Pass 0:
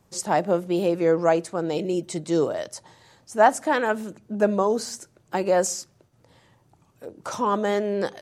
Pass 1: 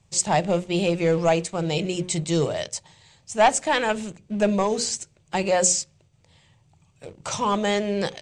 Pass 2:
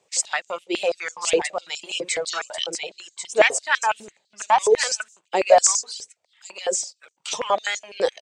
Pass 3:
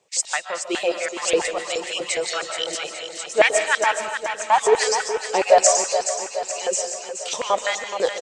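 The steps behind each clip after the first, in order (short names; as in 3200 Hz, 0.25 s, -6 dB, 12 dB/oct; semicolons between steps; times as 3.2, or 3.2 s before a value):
notches 60/120/180/240/300/360/420/480/540 Hz; sample leveller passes 1; EQ curve 150 Hz 0 dB, 260 Hz -13 dB, 800 Hz -9 dB, 1500 Hz -12 dB, 2400 Hz 0 dB, 3400 Hz -1 dB, 5400 Hz -4 dB, 8100 Hz 0 dB, 12000 Hz -27 dB; gain +6.5 dB
echo 1.09 s -5.5 dB; reverb removal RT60 1.1 s; stepped high-pass 12 Hz 450–6500 Hz
feedback echo 0.423 s, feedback 59%, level -9 dB; reverb RT60 0.50 s, pre-delay 0.105 s, DRR 7.5 dB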